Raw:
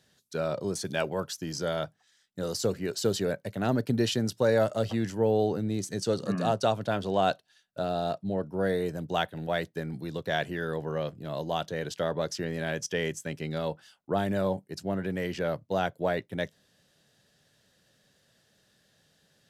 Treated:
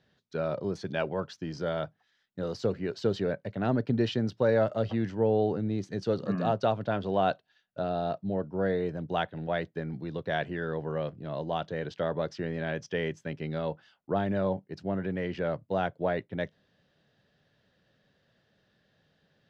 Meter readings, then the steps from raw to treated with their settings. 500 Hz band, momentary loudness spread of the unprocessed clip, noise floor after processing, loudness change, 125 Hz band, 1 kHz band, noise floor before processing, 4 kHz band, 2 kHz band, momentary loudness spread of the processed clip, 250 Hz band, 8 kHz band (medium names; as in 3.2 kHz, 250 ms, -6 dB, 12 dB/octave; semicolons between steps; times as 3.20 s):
-0.5 dB, 9 LU, -72 dBFS, -1.0 dB, 0.0 dB, -1.0 dB, -68 dBFS, -6.0 dB, -2.0 dB, 9 LU, -0.5 dB, under -15 dB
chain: distance through air 240 m